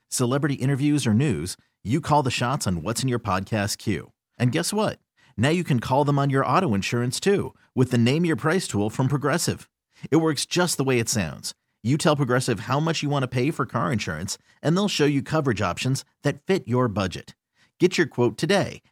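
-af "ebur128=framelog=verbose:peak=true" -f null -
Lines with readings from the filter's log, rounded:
Integrated loudness:
  I:         -23.5 LUFS
  Threshold: -33.8 LUFS
Loudness range:
  LRA:         2.2 LU
  Threshold: -43.9 LUFS
  LRA low:   -24.9 LUFS
  LRA high:  -22.6 LUFS
True peak:
  Peak:       -6.3 dBFS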